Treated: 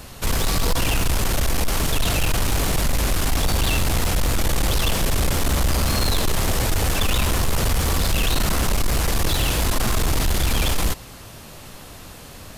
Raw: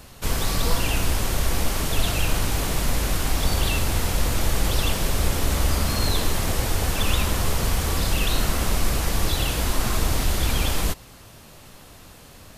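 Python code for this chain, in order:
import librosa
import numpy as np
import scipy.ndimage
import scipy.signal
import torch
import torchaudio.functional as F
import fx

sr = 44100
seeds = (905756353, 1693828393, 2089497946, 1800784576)

y = 10.0 ** (-20.5 / 20.0) * np.tanh(x / 10.0 ** (-20.5 / 20.0))
y = y * 10.0 ** (6.0 / 20.0)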